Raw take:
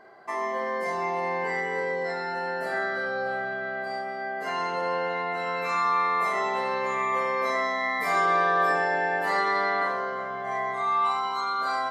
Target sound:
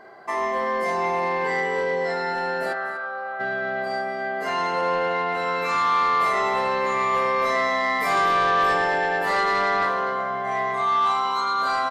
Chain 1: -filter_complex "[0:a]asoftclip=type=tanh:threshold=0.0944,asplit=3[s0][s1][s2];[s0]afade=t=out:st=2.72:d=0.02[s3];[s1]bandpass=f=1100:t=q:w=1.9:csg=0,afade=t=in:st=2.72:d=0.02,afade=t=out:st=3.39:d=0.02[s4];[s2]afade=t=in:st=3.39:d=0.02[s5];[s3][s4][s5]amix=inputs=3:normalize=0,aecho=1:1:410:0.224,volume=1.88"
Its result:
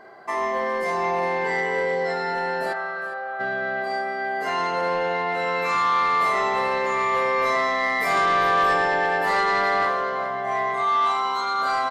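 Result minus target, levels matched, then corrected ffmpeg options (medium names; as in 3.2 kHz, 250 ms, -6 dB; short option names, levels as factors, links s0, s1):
echo 166 ms late
-filter_complex "[0:a]asoftclip=type=tanh:threshold=0.0944,asplit=3[s0][s1][s2];[s0]afade=t=out:st=2.72:d=0.02[s3];[s1]bandpass=f=1100:t=q:w=1.9:csg=0,afade=t=in:st=2.72:d=0.02,afade=t=out:st=3.39:d=0.02[s4];[s2]afade=t=in:st=3.39:d=0.02[s5];[s3][s4][s5]amix=inputs=3:normalize=0,aecho=1:1:244:0.224,volume=1.88"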